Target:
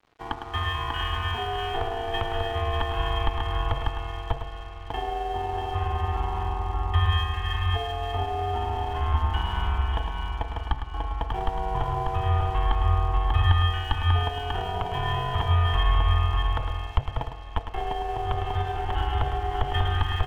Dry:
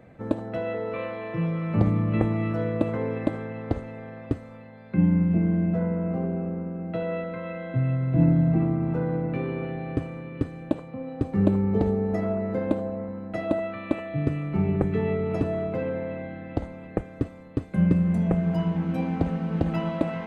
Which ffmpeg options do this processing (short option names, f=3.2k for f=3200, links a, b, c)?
-filter_complex "[0:a]adynamicsmooth=sensitivity=1:basefreq=1.1k,lowpass=f=2.6k:t=q:w=16,asplit=2[a][b];[b]aecho=0:1:592:0.531[c];[a][c]amix=inputs=2:normalize=0,acompressor=threshold=-25dB:ratio=4,bandreject=f=60:t=h:w=6,bandreject=f=120:t=h:w=6,bandreject=f=180:t=h:w=6,bandreject=f=240:t=h:w=6,bandreject=f=300:t=h:w=6,aeval=exprs='val(0)*sin(2*PI*710*n/s)':c=same,equalizer=f=370:w=0.43:g=-12,afreqshift=-140,asplit=2[d][e];[e]aecho=0:1:106:0.376[f];[d][f]amix=inputs=2:normalize=0,asubboost=boost=8.5:cutoff=87,aeval=exprs='sgn(val(0))*max(abs(val(0))-0.00133,0)':c=same,volume=9dB"